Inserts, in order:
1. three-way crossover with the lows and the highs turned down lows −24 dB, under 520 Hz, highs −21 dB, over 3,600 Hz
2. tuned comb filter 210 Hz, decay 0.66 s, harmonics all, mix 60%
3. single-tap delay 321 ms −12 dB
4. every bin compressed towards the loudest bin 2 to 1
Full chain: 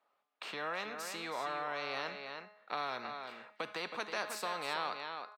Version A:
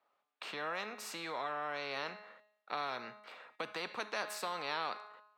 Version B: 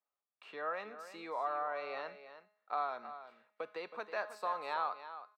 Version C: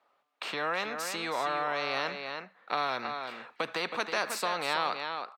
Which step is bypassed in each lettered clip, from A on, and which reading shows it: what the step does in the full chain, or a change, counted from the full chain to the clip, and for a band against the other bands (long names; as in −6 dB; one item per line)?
3, change in momentary loudness spread +3 LU
4, 4 kHz band −9.5 dB
2, change in integrated loudness +7.0 LU